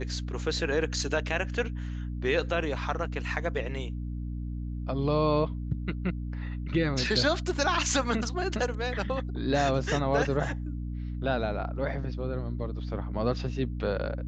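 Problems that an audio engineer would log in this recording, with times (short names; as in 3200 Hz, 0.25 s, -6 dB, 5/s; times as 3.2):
hum 60 Hz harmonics 5 -34 dBFS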